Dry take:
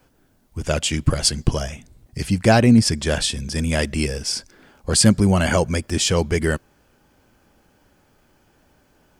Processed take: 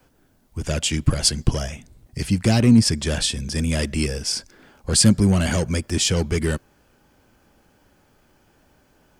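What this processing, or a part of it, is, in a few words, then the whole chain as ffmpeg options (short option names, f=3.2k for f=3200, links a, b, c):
one-band saturation: -filter_complex "[0:a]acrossover=split=350|2700[a][b][c];[b]asoftclip=type=tanh:threshold=-26.5dB[d];[a][d][c]amix=inputs=3:normalize=0"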